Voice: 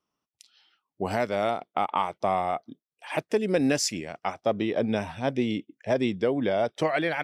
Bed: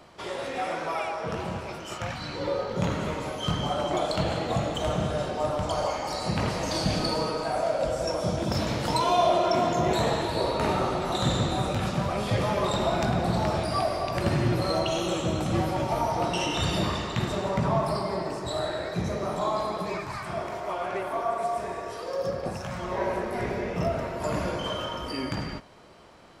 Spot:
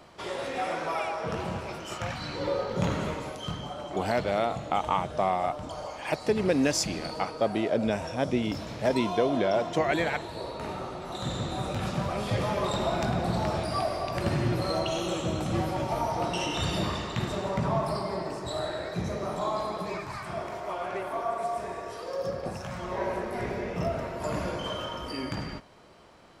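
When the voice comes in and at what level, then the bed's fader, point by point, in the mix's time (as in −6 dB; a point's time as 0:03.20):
2.95 s, −1.0 dB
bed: 0:03.01 −0.5 dB
0:03.73 −10 dB
0:10.97 −10 dB
0:11.91 −2.5 dB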